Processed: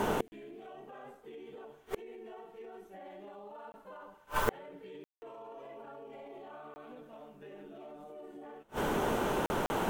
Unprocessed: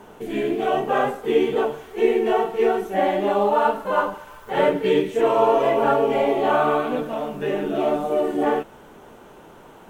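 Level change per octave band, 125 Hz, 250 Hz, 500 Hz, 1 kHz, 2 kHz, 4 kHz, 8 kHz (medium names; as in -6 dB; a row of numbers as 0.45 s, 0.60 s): -9.5 dB, -16.0 dB, -20.0 dB, -17.0 dB, -13.0 dB, -12.0 dB, no reading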